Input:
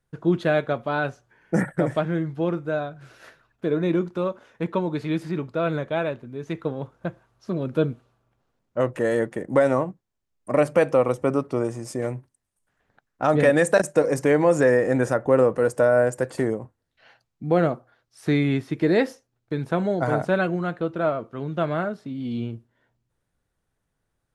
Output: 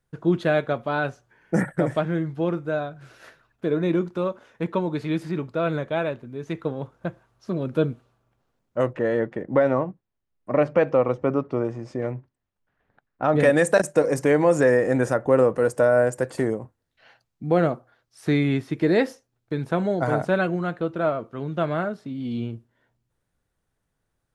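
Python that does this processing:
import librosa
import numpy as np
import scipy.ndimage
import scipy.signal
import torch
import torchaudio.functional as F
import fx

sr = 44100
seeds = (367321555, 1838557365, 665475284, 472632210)

y = fx.air_absorb(x, sr, metres=210.0, at=(8.93, 13.36))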